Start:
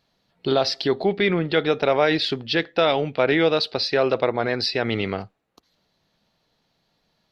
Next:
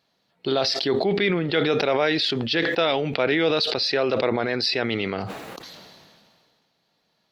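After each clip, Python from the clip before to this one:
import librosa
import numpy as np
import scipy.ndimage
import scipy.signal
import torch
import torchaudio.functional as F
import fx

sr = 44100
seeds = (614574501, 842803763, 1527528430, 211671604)

y = fx.highpass(x, sr, hz=200.0, slope=6)
y = fx.dynamic_eq(y, sr, hz=820.0, q=0.74, threshold_db=-29.0, ratio=4.0, max_db=-4)
y = fx.sustainer(y, sr, db_per_s=28.0)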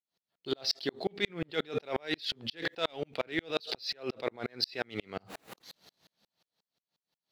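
y = fx.high_shelf(x, sr, hz=3800.0, db=8.0)
y = fx.leveller(y, sr, passes=1)
y = fx.tremolo_decay(y, sr, direction='swelling', hz=5.6, depth_db=40)
y = F.gain(torch.from_numpy(y), -8.0).numpy()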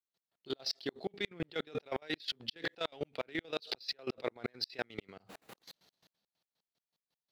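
y = fx.level_steps(x, sr, step_db=17)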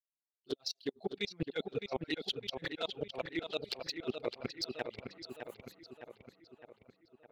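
y = fx.bin_expand(x, sr, power=1.5)
y = fx.env_flanger(y, sr, rest_ms=9.7, full_db=-36.0)
y = fx.echo_filtered(y, sr, ms=610, feedback_pct=58, hz=3700.0, wet_db=-6.5)
y = F.gain(torch.from_numpy(y), 4.5).numpy()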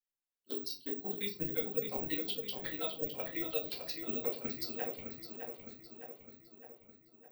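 y = fx.room_shoebox(x, sr, seeds[0], volume_m3=170.0, walls='furnished', distance_m=2.1)
y = (np.kron(scipy.signal.resample_poly(y, 1, 2), np.eye(2)[0]) * 2)[:len(y)]
y = F.gain(torch.from_numpy(y), -7.0).numpy()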